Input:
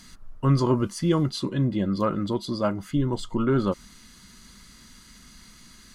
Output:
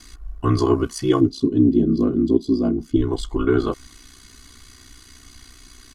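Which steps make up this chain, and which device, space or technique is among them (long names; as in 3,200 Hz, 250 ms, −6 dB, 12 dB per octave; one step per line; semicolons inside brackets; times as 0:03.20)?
0:01.20–0:02.96: drawn EQ curve 140 Hz 0 dB, 220 Hz +13 dB, 830 Hz −12 dB, 1,900 Hz −17 dB, 5,500 Hz −5 dB, 8,800 Hz −11 dB
ring-modulated robot voice (ring modulation 31 Hz; comb filter 2.7 ms, depth 81%)
level +4.5 dB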